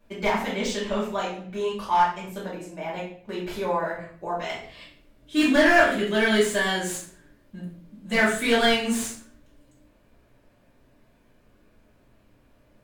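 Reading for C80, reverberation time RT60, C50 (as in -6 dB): 9.0 dB, 0.50 s, 4.5 dB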